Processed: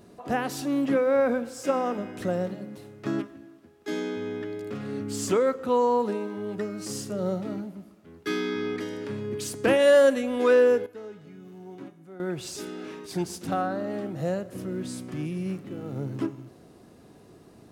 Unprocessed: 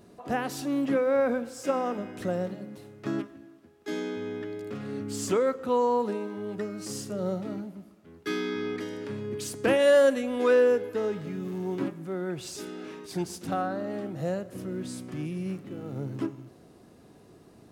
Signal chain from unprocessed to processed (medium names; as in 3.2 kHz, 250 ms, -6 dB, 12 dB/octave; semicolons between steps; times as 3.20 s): 10.86–12.20 s: feedback comb 740 Hz, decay 0.45 s, mix 80%; trim +2 dB